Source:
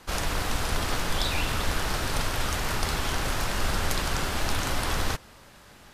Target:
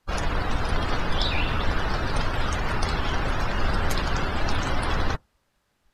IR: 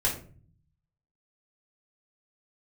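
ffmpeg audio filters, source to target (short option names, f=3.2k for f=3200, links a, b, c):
-af "afftdn=nr=24:nf=-34,volume=3.5dB"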